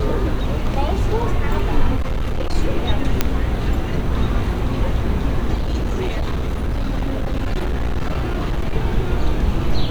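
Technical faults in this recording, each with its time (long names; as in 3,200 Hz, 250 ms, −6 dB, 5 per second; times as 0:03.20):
0:01.96–0:02.55: clipping −17 dBFS
0:03.21: click −1 dBFS
0:05.54–0:08.74: clipping −16.5 dBFS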